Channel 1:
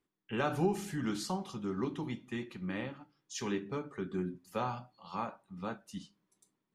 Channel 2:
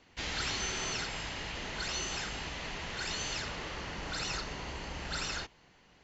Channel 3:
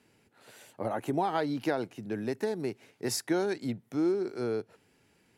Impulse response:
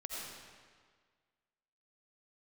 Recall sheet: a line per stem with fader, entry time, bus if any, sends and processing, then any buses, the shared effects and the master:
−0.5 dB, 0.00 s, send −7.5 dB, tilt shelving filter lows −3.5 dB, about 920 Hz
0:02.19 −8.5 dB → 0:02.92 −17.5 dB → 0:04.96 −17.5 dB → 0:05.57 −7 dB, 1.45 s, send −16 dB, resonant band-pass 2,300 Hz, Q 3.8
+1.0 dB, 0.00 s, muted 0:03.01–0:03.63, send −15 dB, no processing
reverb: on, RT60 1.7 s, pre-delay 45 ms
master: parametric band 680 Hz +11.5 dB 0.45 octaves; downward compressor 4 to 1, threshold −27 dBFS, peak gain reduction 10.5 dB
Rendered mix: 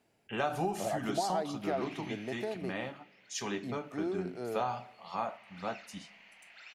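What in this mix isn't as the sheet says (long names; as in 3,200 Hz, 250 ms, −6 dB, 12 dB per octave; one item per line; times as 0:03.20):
stem 1: send −7.5 dB → −14.5 dB
stem 3 +1.0 dB → −8.5 dB
reverb return −8.0 dB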